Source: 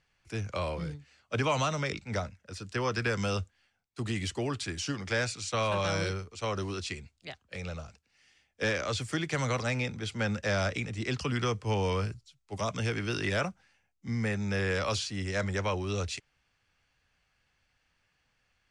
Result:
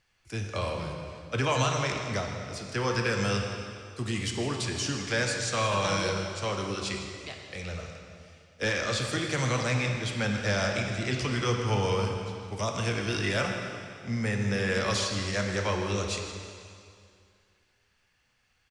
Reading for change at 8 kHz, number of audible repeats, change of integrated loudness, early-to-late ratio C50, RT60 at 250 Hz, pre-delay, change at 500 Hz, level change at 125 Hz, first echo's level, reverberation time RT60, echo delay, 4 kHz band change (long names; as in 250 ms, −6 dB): +5.5 dB, 1, +2.5 dB, 3.0 dB, 2.2 s, 4 ms, +2.5 dB, +2.5 dB, −14.0 dB, 2.3 s, 160 ms, +4.5 dB